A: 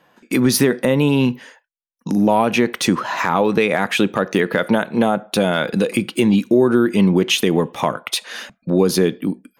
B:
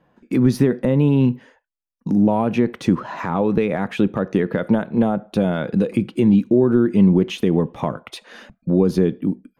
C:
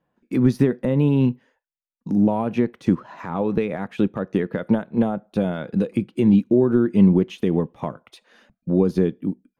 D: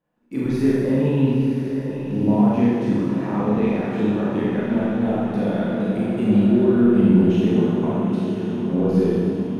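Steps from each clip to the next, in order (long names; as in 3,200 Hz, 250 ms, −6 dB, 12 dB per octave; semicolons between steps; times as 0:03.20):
spectral tilt −3.5 dB per octave; level −7 dB
expander for the loud parts 1.5 to 1, over −36 dBFS
feedback delay with all-pass diffusion 967 ms, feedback 62%, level −8 dB; four-comb reverb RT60 1.9 s, combs from 26 ms, DRR −7.5 dB; level −7 dB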